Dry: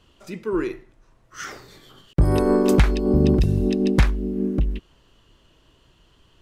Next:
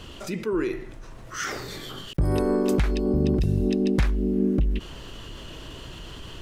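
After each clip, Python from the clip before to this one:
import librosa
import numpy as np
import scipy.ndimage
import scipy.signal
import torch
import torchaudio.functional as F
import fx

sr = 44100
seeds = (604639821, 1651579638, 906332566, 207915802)

y = fx.rider(x, sr, range_db=10, speed_s=0.5)
y = fx.peak_eq(y, sr, hz=1000.0, db=-2.0, octaves=0.77)
y = fx.env_flatten(y, sr, amount_pct=50)
y = F.gain(torch.from_numpy(y), -6.5).numpy()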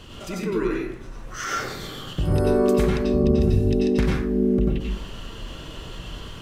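y = fx.rev_plate(x, sr, seeds[0], rt60_s=0.53, hf_ratio=0.6, predelay_ms=80, drr_db=-3.0)
y = F.gain(torch.from_numpy(y), -2.0).numpy()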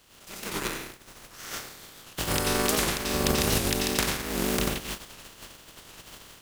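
y = fx.spec_flatten(x, sr, power=0.35)
y = fx.power_curve(y, sr, exponent=1.4)
y = fx.record_warp(y, sr, rpm=78.0, depth_cents=160.0)
y = F.gain(torch.from_numpy(y), -1.5).numpy()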